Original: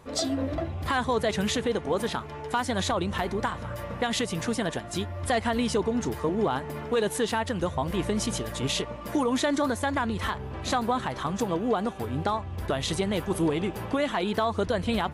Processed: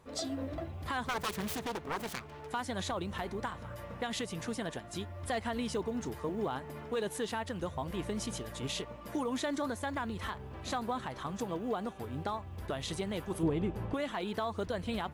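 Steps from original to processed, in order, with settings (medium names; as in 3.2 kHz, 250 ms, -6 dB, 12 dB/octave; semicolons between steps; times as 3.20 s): 1.05–2.47 s: self-modulated delay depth 0.67 ms; companded quantiser 8-bit; 13.43–13.94 s: tilt EQ -2.5 dB/octave; trim -9 dB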